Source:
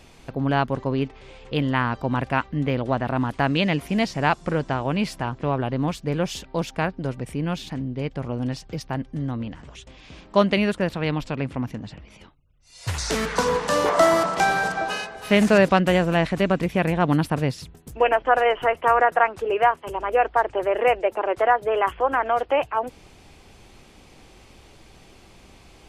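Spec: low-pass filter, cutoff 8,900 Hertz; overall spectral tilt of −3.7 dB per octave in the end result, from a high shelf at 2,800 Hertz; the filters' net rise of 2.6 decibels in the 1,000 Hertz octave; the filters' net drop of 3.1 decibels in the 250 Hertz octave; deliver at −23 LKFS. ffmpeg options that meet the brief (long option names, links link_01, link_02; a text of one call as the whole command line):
ffmpeg -i in.wav -af "lowpass=8900,equalizer=frequency=250:width_type=o:gain=-4.5,equalizer=frequency=1000:width_type=o:gain=3.5,highshelf=frequency=2800:gain=3,volume=-1dB" out.wav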